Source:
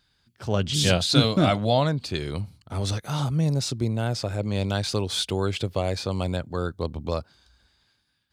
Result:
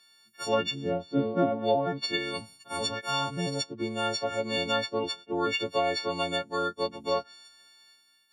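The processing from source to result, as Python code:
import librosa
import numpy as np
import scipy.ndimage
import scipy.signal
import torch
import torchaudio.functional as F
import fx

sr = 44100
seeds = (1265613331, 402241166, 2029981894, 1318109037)

y = fx.freq_snap(x, sr, grid_st=4)
y = scipy.signal.sosfilt(scipy.signal.butter(2, 300.0, 'highpass', fs=sr, output='sos'), y)
y = fx.env_lowpass_down(y, sr, base_hz=460.0, full_db=-15.5)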